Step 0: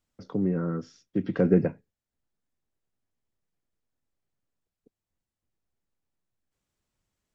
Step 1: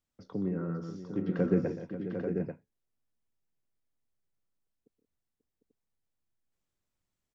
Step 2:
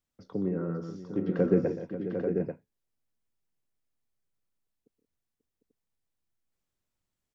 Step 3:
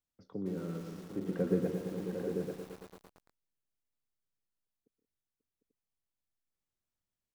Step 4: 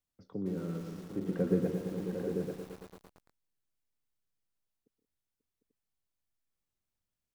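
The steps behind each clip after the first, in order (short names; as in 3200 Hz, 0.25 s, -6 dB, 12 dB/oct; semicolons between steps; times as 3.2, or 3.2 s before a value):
tapped delay 0.123/0.153/0.177/0.538/0.751/0.839 s -12.5/-13/-14.5/-12.5/-7.5/-6.5 dB; gain -6.5 dB
dynamic EQ 470 Hz, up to +5 dB, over -43 dBFS, Q 0.93
lo-fi delay 0.113 s, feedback 80%, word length 7-bit, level -8.5 dB; gain -7.5 dB
low shelf 200 Hz +4 dB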